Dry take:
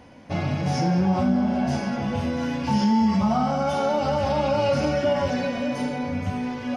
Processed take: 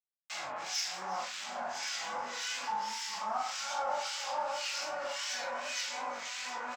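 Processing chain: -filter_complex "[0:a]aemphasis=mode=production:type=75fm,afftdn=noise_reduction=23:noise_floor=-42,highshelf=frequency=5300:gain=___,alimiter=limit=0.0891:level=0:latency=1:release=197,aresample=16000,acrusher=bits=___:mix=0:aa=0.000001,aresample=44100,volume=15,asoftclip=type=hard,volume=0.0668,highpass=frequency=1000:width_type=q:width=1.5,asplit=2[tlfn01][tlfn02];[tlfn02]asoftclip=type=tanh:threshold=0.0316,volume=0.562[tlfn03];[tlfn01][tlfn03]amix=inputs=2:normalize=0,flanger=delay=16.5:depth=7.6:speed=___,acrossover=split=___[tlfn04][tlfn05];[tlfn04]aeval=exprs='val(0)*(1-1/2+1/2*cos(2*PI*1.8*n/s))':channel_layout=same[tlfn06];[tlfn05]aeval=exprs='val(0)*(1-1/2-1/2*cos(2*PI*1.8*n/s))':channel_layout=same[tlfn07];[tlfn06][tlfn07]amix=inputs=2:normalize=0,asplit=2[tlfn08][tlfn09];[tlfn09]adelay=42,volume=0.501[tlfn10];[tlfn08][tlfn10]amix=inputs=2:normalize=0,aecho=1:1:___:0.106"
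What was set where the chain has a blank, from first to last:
4, 5, 2.6, 1600, 361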